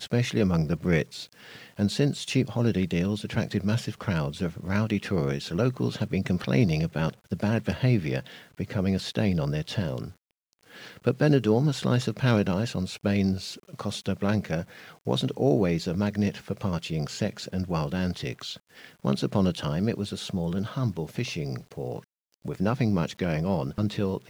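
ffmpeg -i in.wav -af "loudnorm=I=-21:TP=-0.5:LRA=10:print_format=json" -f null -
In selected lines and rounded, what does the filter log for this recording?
"input_i" : "-27.7",
"input_tp" : "-7.4",
"input_lra" : "4.0",
"input_thresh" : "-38.1",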